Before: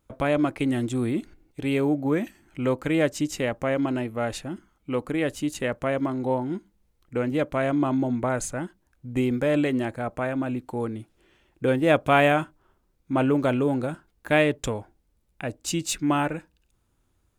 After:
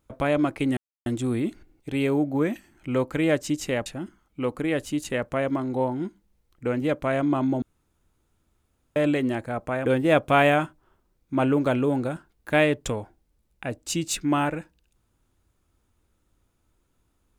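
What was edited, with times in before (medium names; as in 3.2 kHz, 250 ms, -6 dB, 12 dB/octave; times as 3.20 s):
0.77 s: insert silence 0.29 s
3.57–4.36 s: delete
8.12–9.46 s: room tone
10.36–11.64 s: delete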